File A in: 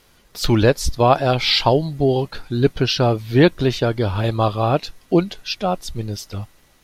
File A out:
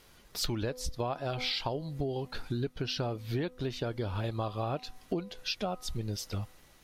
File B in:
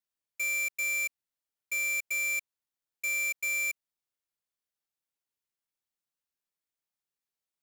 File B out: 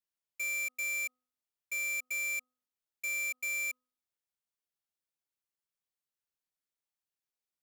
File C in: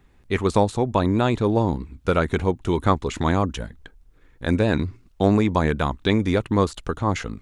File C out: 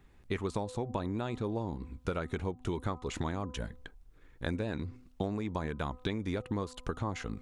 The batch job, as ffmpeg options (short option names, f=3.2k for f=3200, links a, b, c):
-af "bandreject=f=252.1:t=h:w=4,bandreject=f=504.2:t=h:w=4,bandreject=f=756.3:t=h:w=4,bandreject=f=1.0084k:t=h:w=4,bandreject=f=1.2605k:t=h:w=4,acompressor=threshold=-26dB:ratio=12,volume=-4dB"